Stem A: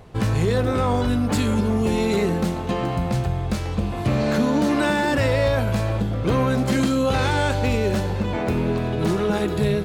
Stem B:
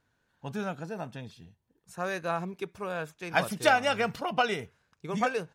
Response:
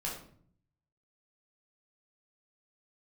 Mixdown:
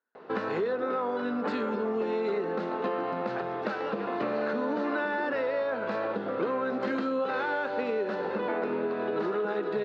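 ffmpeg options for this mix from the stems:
-filter_complex "[0:a]adelay=150,volume=2.5dB[link_01];[1:a]volume=-11.5dB[link_02];[link_01][link_02]amix=inputs=2:normalize=0,highpass=frequency=270:width=0.5412,highpass=frequency=270:width=1.3066,equalizer=frequency=310:width_type=q:width=4:gain=-5,equalizer=frequency=450:width_type=q:width=4:gain=3,equalizer=frequency=710:width_type=q:width=4:gain=-3,equalizer=frequency=1400:width_type=q:width=4:gain=4,equalizer=frequency=2300:width_type=q:width=4:gain=-7,equalizer=frequency=3200:width_type=q:width=4:gain=-9,lowpass=frequency=3400:width=0.5412,lowpass=frequency=3400:width=1.3066,acompressor=threshold=-27dB:ratio=6"

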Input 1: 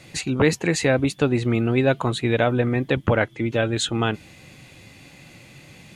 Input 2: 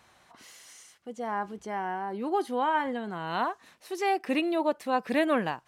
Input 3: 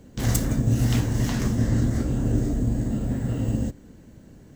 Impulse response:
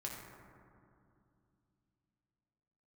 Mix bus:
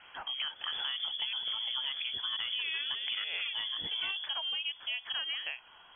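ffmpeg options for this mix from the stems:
-filter_complex "[0:a]volume=-7dB[link_01];[1:a]volume=2dB,asplit=3[link_02][link_03][link_04];[link_02]atrim=end=1.33,asetpts=PTS-STARTPTS,afade=type=out:start_time=1.326:duration=0.004:curve=hsin[link_05];[link_03]atrim=start=1.33:end=2.44,asetpts=PTS-STARTPTS,volume=0[link_06];[link_04]atrim=start=2.44,asetpts=PTS-STARTPTS,afade=type=in:duration=0.004:curve=hsin[link_07];[link_05][link_06][link_07]concat=n=3:v=0:a=1[link_08];[2:a]acompressor=threshold=-28dB:ratio=6,adelay=550,volume=-2.5dB[link_09];[link_01][link_08]amix=inputs=2:normalize=0,highpass=frequency=220:width=0.5412,highpass=frequency=220:width=1.3066,acompressor=threshold=-26dB:ratio=6,volume=0dB[link_10];[link_09][link_10]amix=inputs=2:normalize=0,lowpass=frequency=3000:width_type=q:width=0.5098,lowpass=frequency=3000:width_type=q:width=0.6013,lowpass=frequency=3000:width_type=q:width=0.9,lowpass=frequency=3000:width_type=q:width=2.563,afreqshift=-3500,acompressor=threshold=-38dB:ratio=2"

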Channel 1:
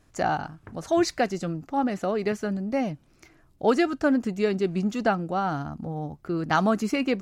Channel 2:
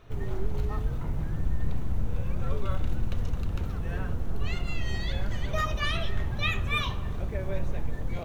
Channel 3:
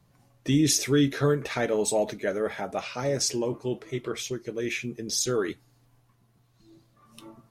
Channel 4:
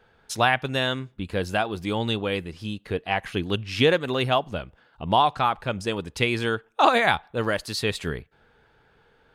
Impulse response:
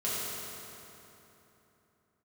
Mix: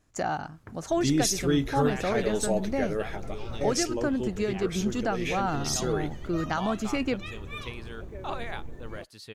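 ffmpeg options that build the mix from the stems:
-filter_complex "[0:a]agate=range=-6dB:threshold=-49dB:ratio=16:detection=peak,volume=-1dB,asplit=2[link_01][link_02];[1:a]equalizer=frequency=360:width=1.5:gain=9.5,adelay=800,volume=-11dB[link_03];[2:a]adelay=550,volume=-3dB[link_04];[3:a]adelay=1450,volume=-17.5dB[link_05];[link_02]apad=whole_len=355279[link_06];[link_04][link_06]sidechaingate=range=-11dB:threshold=-60dB:ratio=16:detection=peak[link_07];[link_01][link_03]amix=inputs=2:normalize=0,equalizer=frequency=6900:width=2.5:gain=4.5,alimiter=limit=-17.5dB:level=0:latency=1:release=450,volume=0dB[link_08];[link_07][link_05][link_08]amix=inputs=3:normalize=0"

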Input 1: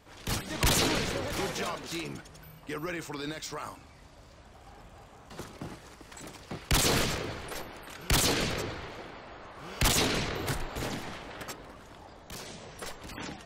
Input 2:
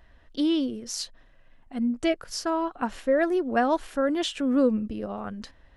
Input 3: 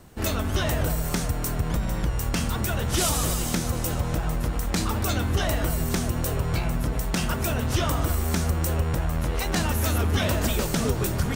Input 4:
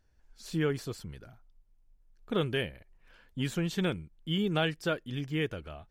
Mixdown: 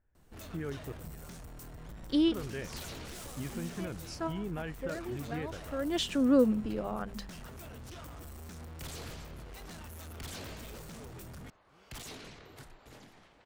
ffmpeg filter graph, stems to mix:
ffmpeg -i stem1.wav -i stem2.wav -i stem3.wav -i stem4.wav -filter_complex "[0:a]aeval=exprs='0.112*(abs(mod(val(0)/0.112+3,4)-2)-1)':channel_layout=same,adelay=2100,volume=-19dB[link_01];[1:a]bandreject=frequency=50:width_type=h:width=6,bandreject=frequency=100:width_type=h:width=6,bandreject=frequency=150:width_type=h:width=6,bandreject=frequency=200:width_type=h:width=6,adelay=1750,volume=-2dB[link_02];[2:a]asoftclip=type=tanh:threshold=-29dB,adelay=150,volume=-15dB[link_03];[3:a]lowpass=frequency=2300:width=0.5412,lowpass=frequency=2300:width=1.3066,alimiter=level_in=1dB:limit=-24dB:level=0:latency=1,volume=-1dB,volume=-5.5dB,asplit=2[link_04][link_05];[link_05]apad=whole_len=331207[link_06];[link_02][link_06]sidechaincompress=threshold=-55dB:ratio=8:attack=16:release=341[link_07];[link_01][link_07][link_03][link_04]amix=inputs=4:normalize=0" out.wav

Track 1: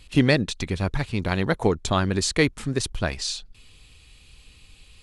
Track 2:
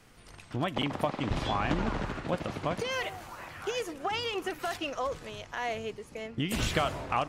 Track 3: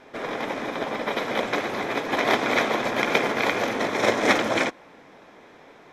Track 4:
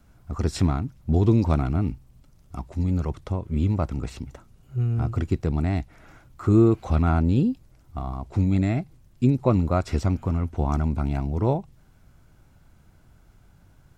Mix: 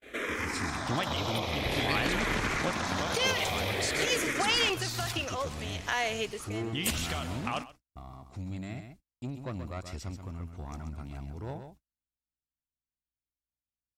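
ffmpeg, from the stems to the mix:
ffmpeg -i stem1.wav -i stem2.wav -i stem3.wav -i stem4.wav -filter_complex "[0:a]adelay=1600,volume=-19dB,asplit=2[link_01][link_02];[link_02]volume=-6.5dB[link_03];[1:a]acompressor=threshold=-31dB:ratio=8,adelay=350,volume=2.5dB,asplit=2[link_04][link_05];[link_05]volume=-19.5dB[link_06];[2:a]acompressor=threshold=-27dB:ratio=6,alimiter=limit=-23dB:level=0:latency=1:release=32,asplit=2[link_07][link_08];[link_08]afreqshift=-0.5[link_09];[link_07][link_09]amix=inputs=2:normalize=1,volume=-1.5dB[link_10];[3:a]aeval=exprs='val(0)+0.00316*(sin(2*PI*60*n/s)+sin(2*PI*2*60*n/s)/2+sin(2*PI*3*60*n/s)/3+sin(2*PI*4*60*n/s)/4+sin(2*PI*5*60*n/s)/5)':channel_layout=same,asoftclip=type=tanh:threshold=-15.5dB,volume=-15.5dB,asplit=3[link_11][link_12][link_13];[link_12]volume=-8dB[link_14];[link_13]apad=whole_len=336834[link_15];[link_04][link_15]sidechaincompress=threshold=-43dB:ratio=5:attack=9:release=123[link_16];[link_03][link_06][link_14]amix=inputs=3:normalize=0,aecho=0:1:130:1[link_17];[link_01][link_16][link_10][link_11][link_17]amix=inputs=5:normalize=0,agate=range=-38dB:threshold=-54dB:ratio=16:detection=peak,highshelf=frequency=2000:gain=11.5" out.wav

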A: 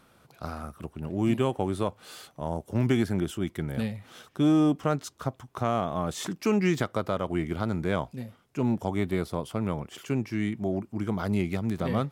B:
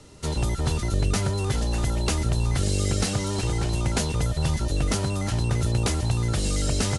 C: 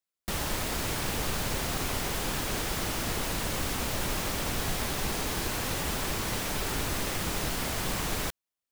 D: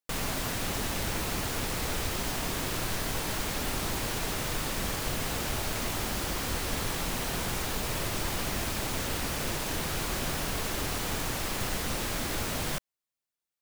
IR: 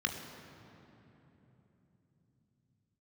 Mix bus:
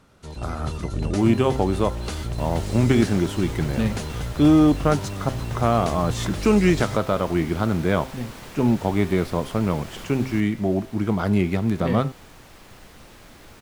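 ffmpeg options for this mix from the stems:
-filter_complex "[0:a]bandreject=frequency=130.8:width_type=h:width=4,bandreject=frequency=261.6:width_type=h:width=4,bandreject=frequency=392.4:width_type=h:width=4,bandreject=frequency=523.2:width_type=h:width=4,bandreject=frequency=654:width_type=h:width=4,bandreject=frequency=784.8:width_type=h:width=4,bandreject=frequency=915.6:width_type=h:width=4,bandreject=frequency=1046.4:width_type=h:width=4,bandreject=frequency=1177.2:width_type=h:width=4,bandreject=frequency=1308:width_type=h:width=4,bandreject=frequency=1438.8:width_type=h:width=4,bandreject=frequency=1569.6:width_type=h:width=4,bandreject=frequency=1700.4:width_type=h:width=4,bandreject=frequency=1831.2:width_type=h:width=4,bandreject=frequency=1962:width_type=h:width=4,bandreject=frequency=2092.8:width_type=h:width=4,bandreject=frequency=2223.6:width_type=h:width=4,bandreject=frequency=2354.4:width_type=h:width=4,bandreject=frequency=2485.2:width_type=h:width=4,bandreject=frequency=2616:width_type=h:width=4,bandreject=frequency=2746.8:width_type=h:width=4,bandreject=frequency=2877.6:width_type=h:width=4,bandreject=frequency=3008.4:width_type=h:width=4,bandreject=frequency=3139.2:width_type=h:width=4,bandreject=frequency=3270:width_type=h:width=4,bandreject=frequency=3400.8:width_type=h:width=4,bandreject=frequency=3531.6:width_type=h:width=4,bandreject=frequency=3662.4:width_type=h:width=4,bandreject=frequency=3793.2:width_type=h:width=4,bandreject=frequency=3924:width_type=h:width=4,bandreject=frequency=4054.8:width_type=h:width=4,bandreject=frequency=4185.6:width_type=h:width=4,volume=1dB[link_01];[1:a]volume=-11dB[link_02];[2:a]adelay=2100,volume=-14dB[link_03];[3:a]adelay=1100,volume=-19.5dB[link_04];[link_01][link_02][link_03][link_04]amix=inputs=4:normalize=0,highshelf=frequency=5500:gain=-7,dynaudnorm=framelen=130:gausssize=7:maxgain=6dB"

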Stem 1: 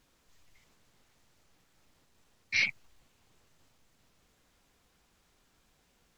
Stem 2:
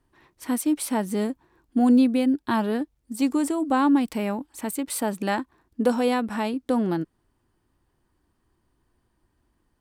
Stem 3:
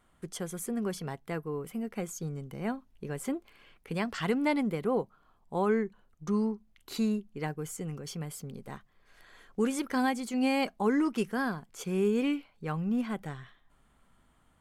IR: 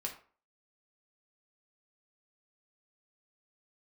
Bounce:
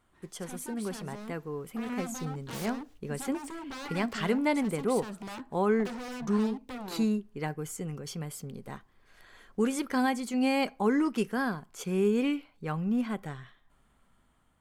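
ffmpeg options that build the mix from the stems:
-filter_complex "[0:a]volume=-3dB[link_01];[1:a]lowpass=8900,volume=-9dB,asplit=2[link_02][link_03];[link_03]volume=-18.5dB[link_04];[2:a]volume=-4dB,asplit=3[link_05][link_06][link_07];[link_06]volume=-16.5dB[link_08];[link_07]apad=whole_len=272372[link_09];[link_01][link_09]sidechaingate=range=-33dB:threshold=-59dB:ratio=16:detection=peak[link_10];[link_10][link_02]amix=inputs=2:normalize=0,aeval=exprs='0.0178*(abs(mod(val(0)/0.0178+3,4)-2)-1)':channel_layout=same,alimiter=level_in=17dB:limit=-24dB:level=0:latency=1:release=57,volume=-17dB,volume=0dB[link_11];[3:a]atrim=start_sample=2205[link_12];[link_04][link_08]amix=inputs=2:normalize=0[link_13];[link_13][link_12]afir=irnorm=-1:irlink=0[link_14];[link_05][link_11][link_14]amix=inputs=3:normalize=0,dynaudnorm=framelen=720:gausssize=5:maxgain=4dB"

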